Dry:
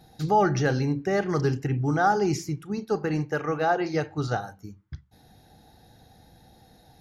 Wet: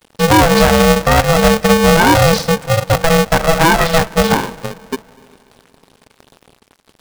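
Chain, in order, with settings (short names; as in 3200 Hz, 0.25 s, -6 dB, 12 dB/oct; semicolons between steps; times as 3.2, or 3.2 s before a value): in parallel at -3 dB: compressor, threshold -32 dBFS, peak gain reduction 15 dB; on the sum: formant shift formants -4 st; crossover distortion -45.5 dBFS; on a send at -21.5 dB: air absorption 340 m + reverb RT60 2.8 s, pre-delay 0.152 s; on the sum: maximiser +15 dB; polarity switched at an audio rate 330 Hz; gain -1 dB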